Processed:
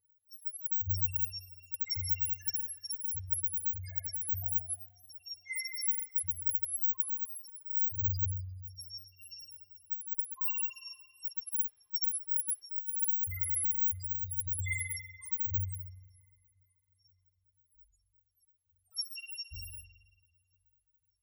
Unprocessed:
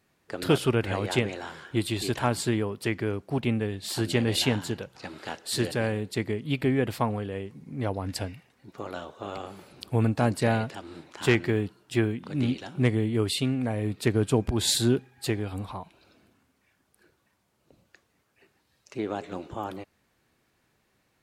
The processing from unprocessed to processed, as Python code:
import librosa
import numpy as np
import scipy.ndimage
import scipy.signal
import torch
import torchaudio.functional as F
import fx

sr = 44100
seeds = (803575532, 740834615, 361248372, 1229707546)

y = fx.bit_reversed(x, sr, seeds[0], block=256)
y = fx.spec_topn(y, sr, count=1)
y = fx.dereverb_blind(y, sr, rt60_s=0.54)
y = fx.ripple_eq(y, sr, per_octave=0.89, db=13)
y = fx.echo_tape(y, sr, ms=493, feedback_pct=80, wet_db=-23.5, lp_hz=1100.0, drive_db=22.0, wow_cents=9)
y = fx.quant_float(y, sr, bits=6)
y = fx.over_compress(y, sr, threshold_db=-35.0, ratio=-0.5)
y = y + 0.99 * np.pad(y, (int(2.5 * sr / 1000.0), 0))[:len(y)]
y = fx.rev_spring(y, sr, rt60_s=1.4, pass_ms=(43,), chirp_ms=55, drr_db=-2.0)